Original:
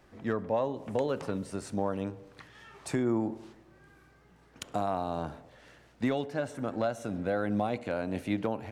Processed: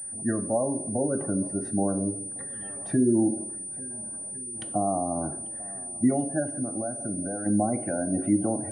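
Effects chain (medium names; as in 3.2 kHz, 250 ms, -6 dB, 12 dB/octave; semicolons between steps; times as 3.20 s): shuffle delay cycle 1406 ms, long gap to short 1.5:1, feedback 59%, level -20 dB; spectral gate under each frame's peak -20 dB strong; dynamic bell 310 Hz, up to +5 dB, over -44 dBFS, Q 2; 3.93–4.21 s: spectral replace 320–1100 Hz after; 6.42–7.46 s: compression 6:1, threshold -32 dBFS, peak gain reduction 8 dB; reverberation RT60 0.55 s, pre-delay 3 ms, DRR 9 dB; class-D stage that switches slowly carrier 9.3 kHz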